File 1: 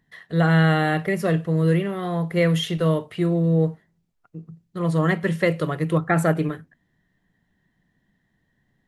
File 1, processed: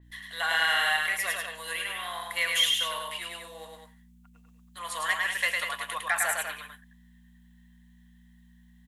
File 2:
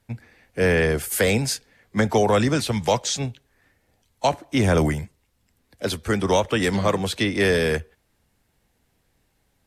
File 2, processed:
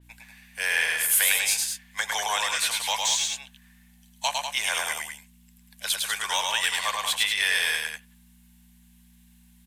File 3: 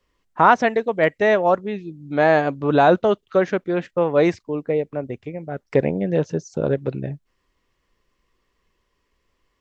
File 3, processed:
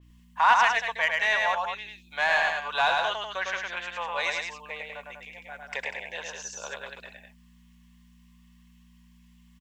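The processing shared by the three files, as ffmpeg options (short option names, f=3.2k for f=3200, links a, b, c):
-filter_complex "[0:a]highpass=f=990:w=0.5412,highpass=f=990:w=1.3066,bandreject=f=1.3k:w=5.3,aexciter=amount=1.4:drive=6.9:freq=2.7k,asplit=2[a][b];[b]asoftclip=type=tanh:threshold=-19.5dB,volume=-3dB[c];[a][c]amix=inputs=2:normalize=0,aeval=exprs='val(0)+0.00316*(sin(2*PI*60*n/s)+sin(2*PI*2*60*n/s)/2+sin(2*PI*3*60*n/s)/3+sin(2*PI*4*60*n/s)/4+sin(2*PI*5*60*n/s)/5)':c=same,asplit=2[d][e];[e]aecho=0:1:105|195.3:0.708|0.447[f];[d][f]amix=inputs=2:normalize=0,adynamicequalizer=threshold=0.0178:dfrequency=4200:dqfactor=0.7:tfrequency=4200:tqfactor=0.7:attack=5:release=100:ratio=0.375:range=1.5:mode=cutabove:tftype=highshelf,volume=-4dB"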